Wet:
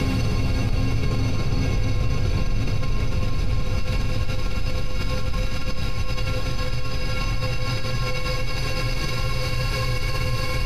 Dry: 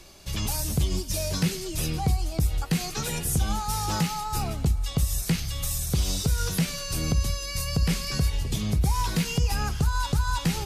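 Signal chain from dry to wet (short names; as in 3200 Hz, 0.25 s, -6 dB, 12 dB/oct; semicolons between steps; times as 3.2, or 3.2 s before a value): rattling part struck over -27 dBFS, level -29 dBFS; air absorption 390 m; diffused feedback echo 0.907 s, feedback 52%, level -11 dB; frequency shift -50 Hz; tone controls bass +1 dB, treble +12 dB; tape echo 0.27 s, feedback 84%, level -11 dB, low-pass 4100 Hz; Paulstretch 20×, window 0.50 s, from 7.04; fast leveller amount 70%; gain -1.5 dB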